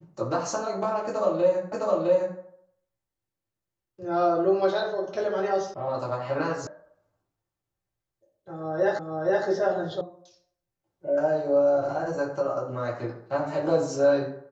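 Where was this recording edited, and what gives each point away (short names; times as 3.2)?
1.72 repeat of the last 0.66 s
5.74 sound cut off
6.67 sound cut off
8.99 repeat of the last 0.47 s
10.01 sound cut off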